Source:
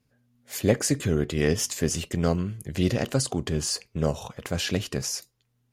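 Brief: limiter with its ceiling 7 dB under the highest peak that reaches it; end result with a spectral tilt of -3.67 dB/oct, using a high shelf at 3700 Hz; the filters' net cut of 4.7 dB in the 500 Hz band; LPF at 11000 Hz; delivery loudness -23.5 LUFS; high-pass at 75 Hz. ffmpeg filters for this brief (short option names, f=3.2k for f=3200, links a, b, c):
-af "highpass=75,lowpass=11k,equalizer=f=500:t=o:g=-6,highshelf=f=3.7k:g=4,volume=5dB,alimiter=limit=-10.5dB:level=0:latency=1"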